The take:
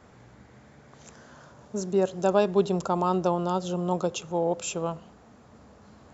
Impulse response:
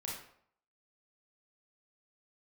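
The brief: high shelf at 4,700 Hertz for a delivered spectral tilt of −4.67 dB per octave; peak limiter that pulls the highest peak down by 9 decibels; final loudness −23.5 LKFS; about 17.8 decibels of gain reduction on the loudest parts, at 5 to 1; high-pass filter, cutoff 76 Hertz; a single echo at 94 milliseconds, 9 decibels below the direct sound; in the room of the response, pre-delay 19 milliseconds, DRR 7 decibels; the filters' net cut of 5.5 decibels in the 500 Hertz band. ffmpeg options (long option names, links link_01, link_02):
-filter_complex "[0:a]highpass=76,equalizer=frequency=500:width_type=o:gain=-7.5,highshelf=frequency=4700:gain=3,acompressor=threshold=-41dB:ratio=5,alimiter=level_in=13dB:limit=-24dB:level=0:latency=1,volume=-13dB,aecho=1:1:94:0.355,asplit=2[link_01][link_02];[1:a]atrim=start_sample=2205,adelay=19[link_03];[link_02][link_03]afir=irnorm=-1:irlink=0,volume=-7dB[link_04];[link_01][link_04]amix=inputs=2:normalize=0,volume=24.5dB"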